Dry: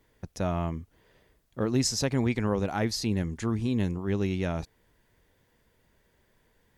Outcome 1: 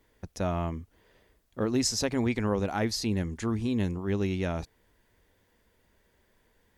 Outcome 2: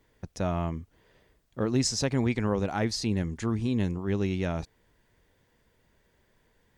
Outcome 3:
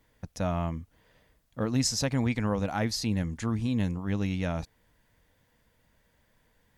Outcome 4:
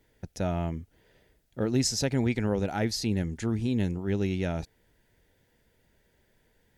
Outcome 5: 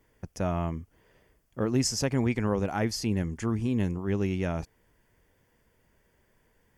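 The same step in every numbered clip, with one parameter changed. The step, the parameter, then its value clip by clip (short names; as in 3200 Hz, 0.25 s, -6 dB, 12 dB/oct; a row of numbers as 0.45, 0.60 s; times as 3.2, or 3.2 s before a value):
bell, frequency: 140, 12000, 380, 1100, 3900 Hz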